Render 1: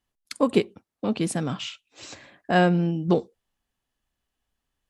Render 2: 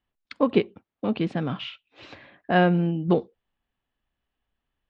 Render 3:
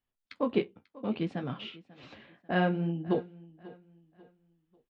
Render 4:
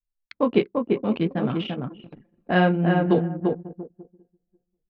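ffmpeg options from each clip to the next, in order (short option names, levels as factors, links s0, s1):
-af "lowpass=f=3500:w=0.5412,lowpass=f=3500:w=1.3066"
-af "flanger=delay=7.5:depth=8.7:regen=-40:speed=0.6:shape=sinusoidal,aecho=1:1:542|1084|1626:0.1|0.035|0.0123,volume=0.668"
-filter_complex "[0:a]asplit=2[s0][s1];[s1]adelay=343,lowpass=f=1800:p=1,volume=0.708,asplit=2[s2][s3];[s3]adelay=343,lowpass=f=1800:p=1,volume=0.21,asplit=2[s4][s5];[s5]adelay=343,lowpass=f=1800:p=1,volume=0.21[s6];[s0][s2][s4][s6]amix=inputs=4:normalize=0,anlmdn=0.251,volume=2.51"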